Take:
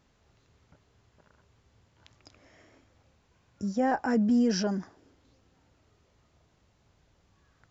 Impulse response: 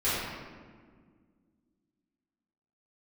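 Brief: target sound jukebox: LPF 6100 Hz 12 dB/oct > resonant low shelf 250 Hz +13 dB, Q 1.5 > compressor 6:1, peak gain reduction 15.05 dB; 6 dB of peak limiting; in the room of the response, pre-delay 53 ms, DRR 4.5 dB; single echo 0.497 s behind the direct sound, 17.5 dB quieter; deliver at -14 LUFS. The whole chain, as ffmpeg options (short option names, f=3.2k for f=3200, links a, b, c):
-filter_complex "[0:a]alimiter=limit=-22dB:level=0:latency=1,aecho=1:1:497:0.133,asplit=2[a][b];[1:a]atrim=start_sample=2205,adelay=53[c];[b][c]afir=irnorm=-1:irlink=0,volume=-16.5dB[d];[a][d]amix=inputs=2:normalize=0,lowpass=6.1k,lowshelf=f=250:t=q:w=1.5:g=13,acompressor=threshold=-29dB:ratio=6,volume=19dB"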